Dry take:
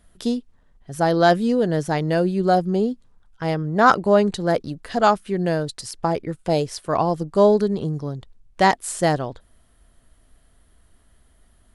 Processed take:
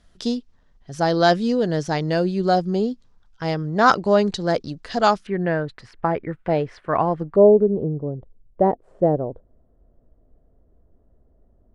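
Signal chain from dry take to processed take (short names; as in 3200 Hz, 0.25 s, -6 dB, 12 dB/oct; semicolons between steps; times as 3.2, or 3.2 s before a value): synth low-pass 5600 Hz, resonance Q 1.9, from 5.27 s 1900 Hz, from 7.36 s 520 Hz; gain -1 dB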